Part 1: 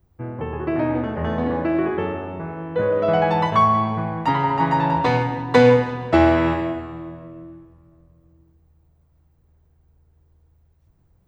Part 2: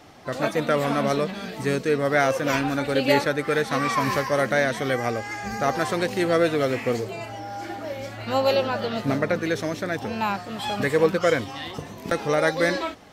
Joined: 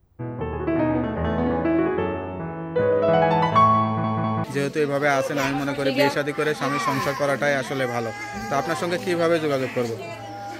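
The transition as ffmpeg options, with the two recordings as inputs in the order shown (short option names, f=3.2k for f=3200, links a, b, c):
-filter_complex "[0:a]apad=whole_dur=10.59,atrim=end=10.59,asplit=3[a][b][c];[a]atrim=end=4.042[d];[b]atrim=start=3.838:end=4.042[e];[c]atrim=start=3.838:end=4.042[f];[1:a]atrim=start=1.538:end=7.69[g];[d][e]acrossfade=d=0.004:c1=hsin:c2=hsin[h];[h][f]acrossfade=d=0.004:c1=hsin:c2=hsin[i];[i][g]acrossfade=d=0.004:c1=hsin:c2=hsin"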